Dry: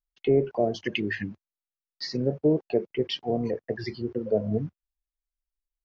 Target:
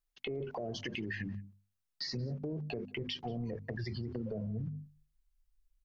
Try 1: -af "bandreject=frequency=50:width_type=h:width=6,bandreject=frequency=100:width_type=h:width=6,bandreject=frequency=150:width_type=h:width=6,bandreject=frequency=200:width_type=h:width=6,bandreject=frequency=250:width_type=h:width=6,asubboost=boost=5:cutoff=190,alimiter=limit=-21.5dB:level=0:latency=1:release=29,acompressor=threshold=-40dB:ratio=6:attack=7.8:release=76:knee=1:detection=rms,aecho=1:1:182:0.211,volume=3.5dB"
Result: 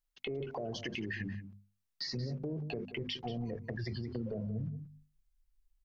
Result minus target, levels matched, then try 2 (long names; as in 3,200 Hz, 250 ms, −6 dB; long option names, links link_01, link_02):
echo-to-direct +11.5 dB
-af "bandreject=frequency=50:width_type=h:width=6,bandreject=frequency=100:width_type=h:width=6,bandreject=frequency=150:width_type=h:width=6,bandreject=frequency=200:width_type=h:width=6,bandreject=frequency=250:width_type=h:width=6,asubboost=boost=5:cutoff=190,alimiter=limit=-21.5dB:level=0:latency=1:release=29,acompressor=threshold=-40dB:ratio=6:attack=7.8:release=76:knee=1:detection=rms,aecho=1:1:182:0.0562,volume=3.5dB"